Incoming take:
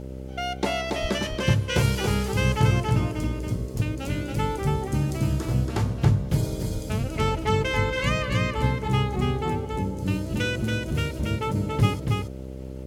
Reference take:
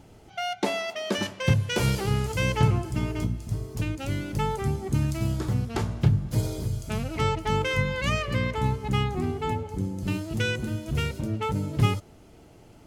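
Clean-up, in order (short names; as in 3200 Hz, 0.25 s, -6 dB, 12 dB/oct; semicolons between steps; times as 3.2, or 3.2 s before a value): de-hum 65.2 Hz, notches 9; 1.01–1.13 HPF 140 Hz 24 dB/oct; 6.72–6.84 HPF 140 Hz 24 dB/oct; expander -25 dBFS, range -21 dB; inverse comb 0.28 s -3.5 dB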